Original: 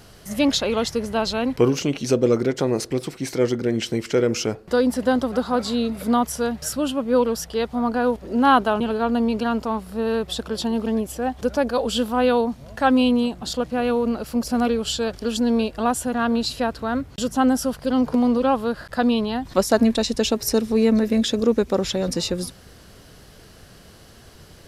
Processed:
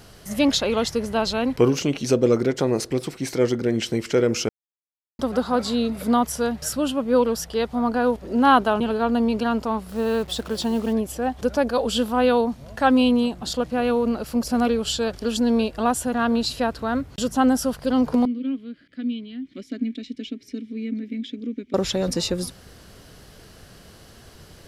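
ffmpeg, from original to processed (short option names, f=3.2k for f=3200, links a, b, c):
-filter_complex "[0:a]asettb=1/sr,asplit=3[a][b][c];[a]atrim=end=9.894[d];[b]atrim=start=9.89:end=10.93,asetpts=PTS-STARTPTS,afade=t=in:d=0.004:c=qsin,afade=t=out:st=1.036:d=0.004:c=qsin,acrusher=bits=6:mix=0:aa=0.5[e];[c]atrim=start=10.926[f];[d][e]acrossfade=d=0.004:c1=hsin:c2=qsin[g];[g][f]acrossfade=d=0.004:c1=qsin:c2=hsin,asettb=1/sr,asplit=3[h][i][j];[h]atrim=end=18.254[k];[i]atrim=start=18.25:end=21.74,asetpts=PTS-STARTPTS,afade=t=in:d=0.004:c=qsin,afade=t=out:st=3.486:d=0.004:c=qsin,asplit=3[l][m][n];[l]bandpass=f=270:t=q:w=8,volume=0dB[o];[m]bandpass=f=2.29k:t=q:w=8,volume=-6dB[p];[n]bandpass=f=3.01k:t=q:w=8,volume=-9dB[q];[o][p][q]amix=inputs=3:normalize=0[r];[j]atrim=start=21.736[s];[k][r]acrossfade=d=0.004:c1=hsin:c2=qsin[t];[t][s]acrossfade=d=0.004:c1=qsin:c2=hsin,asplit=3[u][v][w];[u]atrim=end=4.49,asetpts=PTS-STARTPTS,afade=t=out:st=4.486:d=0.004:c=hsin[x];[v]atrim=start=4.49:end=5.19,asetpts=PTS-STARTPTS,volume=0[y];[w]atrim=start=5.19,asetpts=PTS-STARTPTS,afade=t=in:d=0.004:c=hsin[z];[x][y][z]concat=n=3:v=0:a=1"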